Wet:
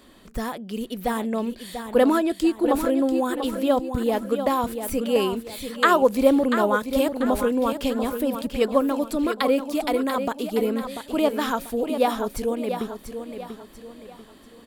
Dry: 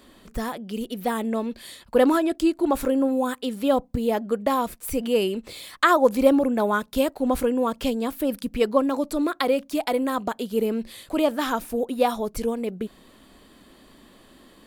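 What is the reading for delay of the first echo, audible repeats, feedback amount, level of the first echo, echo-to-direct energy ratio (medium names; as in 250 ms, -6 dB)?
690 ms, 4, 38%, -8.5 dB, -8.0 dB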